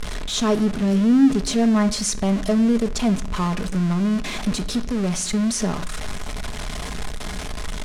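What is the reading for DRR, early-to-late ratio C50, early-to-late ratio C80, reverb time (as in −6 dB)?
7.5 dB, 16.5 dB, 19.5 dB, 0.60 s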